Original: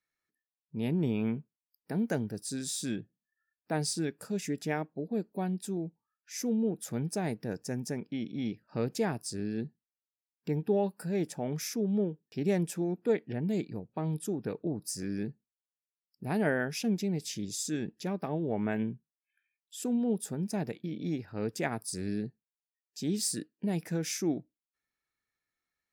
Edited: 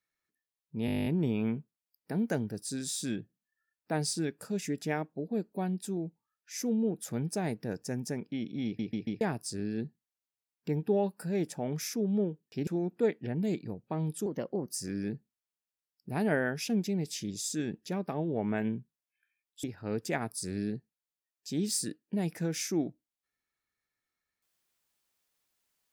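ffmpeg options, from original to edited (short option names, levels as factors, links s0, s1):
-filter_complex "[0:a]asplit=19[s0][s1][s2][s3][s4][s5][s6][s7][s8][s9][s10][s11][s12][s13][s14][s15][s16][s17][s18];[s0]atrim=end=0.882[s19];[s1]atrim=start=0.858:end=0.882[s20];[s2]atrim=start=0.858:end=0.882[s21];[s3]atrim=start=0.858:end=0.882[s22];[s4]atrim=start=0.858:end=0.882[s23];[s5]atrim=start=0.858:end=0.882[s24];[s6]atrim=start=0.858:end=0.882[s25];[s7]atrim=start=0.858:end=0.882[s26];[s8]atrim=start=0.858:end=0.882[s27];[s9]atrim=start=0.858:end=0.882[s28];[s10]atrim=start=0.858:end=8.592[s29];[s11]atrim=start=8.448:end=8.592[s30];[s12]atrim=start=8.448:end=8.592[s31];[s13]atrim=start=8.448:end=8.592[s32];[s14]atrim=start=9.008:end=12.472[s33];[s15]atrim=start=12.728:end=14.324[s34];[s16]atrim=start=14.32:end=14.85,asetpts=PTS-STARTPTS,asetrate=52479,aresample=44100,atrim=end_sample=19641,asetpts=PTS-STARTPTS[s35];[s17]atrim=start=14.846:end=19.782[s36];[s18]atrim=start=21.138[s37];[s19][s20]acrossfade=d=0.004:c1=hsin:c2=hsin[s38];[s38][s21]acrossfade=d=0.004:c1=hsin:c2=hsin[s39];[s39][s22]acrossfade=d=0.004:c1=hsin:c2=hsin[s40];[s40][s23]acrossfade=d=0.004:c1=hsin:c2=hsin[s41];[s41][s24]acrossfade=d=0.004:c1=hsin:c2=hsin[s42];[s42][s25]acrossfade=d=0.004:c1=hsin:c2=hsin[s43];[s43][s26]acrossfade=d=0.004:c1=hsin:c2=hsin[s44];[s44][s27]acrossfade=d=0.004:c1=hsin:c2=hsin[s45];[s45][s28]acrossfade=d=0.004:c1=hsin:c2=hsin[s46];[s46][s29]acrossfade=d=0.004:c1=hsin:c2=hsin[s47];[s47][s30]acrossfade=d=0.004:c1=hsin:c2=hsin[s48];[s48][s31]acrossfade=d=0.004:c1=hsin:c2=hsin[s49];[s49][s32]acrossfade=d=0.004:c1=hsin:c2=hsin[s50];[s50][s33]acrossfade=d=0.004:c1=hsin:c2=hsin[s51];[s51][s34]acrossfade=d=0.004:c1=hsin:c2=hsin[s52];[s52][s35]acrossfade=d=0.004:c1=hsin:c2=hsin[s53];[s53][s36]acrossfade=d=0.004:c1=hsin:c2=hsin[s54];[s54][s37]acrossfade=d=0.004:c1=hsin:c2=hsin"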